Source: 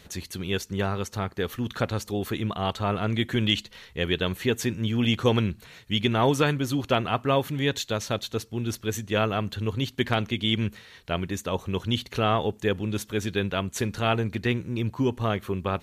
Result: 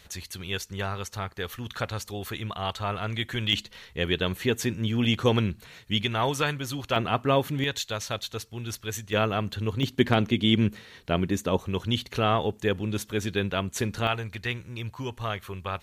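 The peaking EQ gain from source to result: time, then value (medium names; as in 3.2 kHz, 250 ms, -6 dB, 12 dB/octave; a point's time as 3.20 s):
peaking EQ 260 Hz 2.2 oct
-9.5 dB
from 3.53 s -1 dB
from 6.03 s -9 dB
from 6.96 s +0.5 dB
from 7.64 s -9.5 dB
from 9.13 s -1 dB
from 9.83 s +5.5 dB
from 11.58 s -1 dB
from 14.07 s -13 dB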